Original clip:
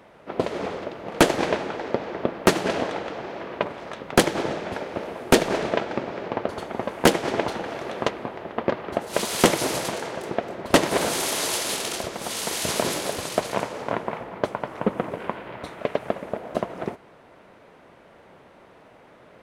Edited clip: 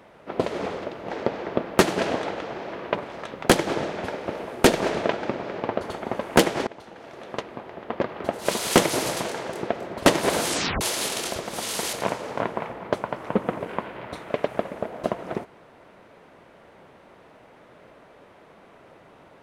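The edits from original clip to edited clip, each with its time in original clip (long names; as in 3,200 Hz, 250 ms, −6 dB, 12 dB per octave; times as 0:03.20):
0:01.10–0:01.78: remove
0:07.35–0:09.13: fade in, from −21.5 dB
0:11.16: tape stop 0.33 s
0:12.61–0:13.44: remove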